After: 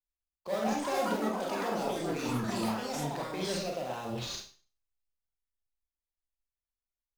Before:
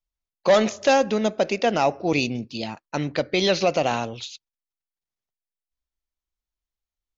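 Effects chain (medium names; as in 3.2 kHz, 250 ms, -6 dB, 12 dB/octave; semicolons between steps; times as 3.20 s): reverse; compression 6:1, threshold -30 dBFS, peak gain reduction 16 dB; reverse; peak limiter -29.5 dBFS, peak gain reduction 10 dB; in parallel at -4.5 dB: sample-rate reducer 4.4 kHz, jitter 20%; on the sum: Schroeder reverb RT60 0.44 s, combs from 32 ms, DRR -0.5 dB; ever faster or slower copies 284 ms, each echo +5 st, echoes 3; three bands expanded up and down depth 40%; trim -2.5 dB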